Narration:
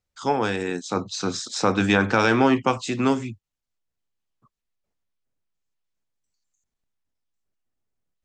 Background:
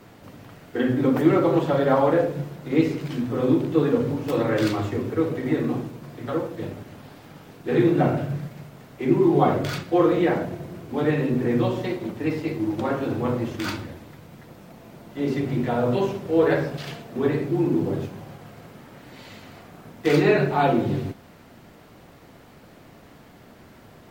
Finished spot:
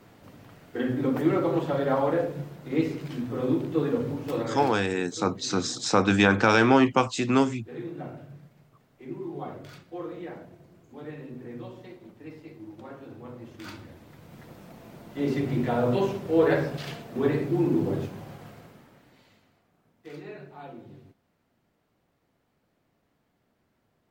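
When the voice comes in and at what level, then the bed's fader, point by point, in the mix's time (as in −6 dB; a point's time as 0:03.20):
4.30 s, −0.5 dB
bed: 0:04.36 −5.5 dB
0:04.86 −18 dB
0:13.33 −18 dB
0:14.40 −2 dB
0:18.47 −2 dB
0:19.61 −23.5 dB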